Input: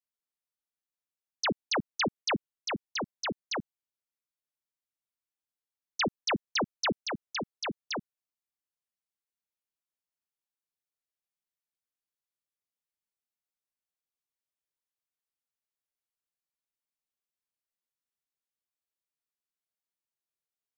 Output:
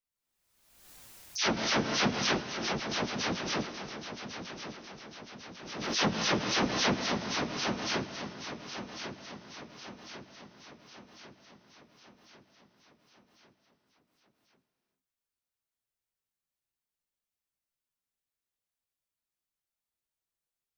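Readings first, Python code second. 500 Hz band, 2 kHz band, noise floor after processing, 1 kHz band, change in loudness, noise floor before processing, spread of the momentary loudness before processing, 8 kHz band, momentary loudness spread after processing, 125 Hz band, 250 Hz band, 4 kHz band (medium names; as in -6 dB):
+2.5 dB, +2.5 dB, under -85 dBFS, +2.0 dB, +1.5 dB, under -85 dBFS, 8 LU, no reading, 19 LU, +6.5 dB, +4.0 dB, +3.5 dB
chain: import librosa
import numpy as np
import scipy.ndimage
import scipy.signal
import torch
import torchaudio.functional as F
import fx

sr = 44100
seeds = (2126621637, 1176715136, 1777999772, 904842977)

p1 = fx.phase_scramble(x, sr, seeds[0], window_ms=100)
p2 = fx.low_shelf(p1, sr, hz=130.0, db=10.0)
p3 = p2 + fx.echo_feedback(p2, sr, ms=1098, feedback_pct=52, wet_db=-10, dry=0)
p4 = fx.rev_gated(p3, sr, seeds[1], gate_ms=440, shape='flat', drr_db=10.0)
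y = fx.pre_swell(p4, sr, db_per_s=49.0)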